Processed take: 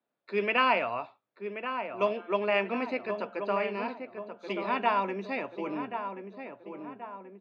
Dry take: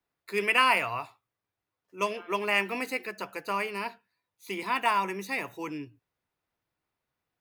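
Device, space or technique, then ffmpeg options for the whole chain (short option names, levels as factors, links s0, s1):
kitchen radio: -filter_complex "[0:a]asettb=1/sr,asplit=3[s0][s1][s2];[s0]atrim=end=3.884[s3];[s1]atrim=start=3.88:end=4.53,asetpts=PTS-STARTPTS,afade=t=in:d=0.004:c=qsin,afade=t=out:st=0.646:d=0.004:c=qsin,highshelf=f=2900:g=10[s4];[s2]atrim=start=4.526[s5];[s3][s4]acrossfade=d=0.004:c1=hsin:c2=qsin[s6];[s6][s5]acrossfade=d=0.004:c1=qsin:c2=hsin,highpass=190,equalizer=f=230:t=q:w=4:g=8,equalizer=f=590:t=q:w=4:g=8,equalizer=f=1100:t=q:w=4:g=-3,equalizer=f=2000:t=q:w=4:g=-7,equalizer=f=2900:t=q:w=4:g=-4,lowpass=f=3600:w=0.5412,lowpass=f=3600:w=1.3066,asplit=2[s7][s8];[s8]adelay=1081,lowpass=f=1700:p=1,volume=0.422,asplit=2[s9][s10];[s10]adelay=1081,lowpass=f=1700:p=1,volume=0.5,asplit=2[s11][s12];[s12]adelay=1081,lowpass=f=1700:p=1,volume=0.5,asplit=2[s13][s14];[s14]adelay=1081,lowpass=f=1700:p=1,volume=0.5,asplit=2[s15][s16];[s16]adelay=1081,lowpass=f=1700:p=1,volume=0.5,asplit=2[s17][s18];[s18]adelay=1081,lowpass=f=1700:p=1,volume=0.5[s19];[s7][s9][s11][s13][s15][s17][s19]amix=inputs=7:normalize=0"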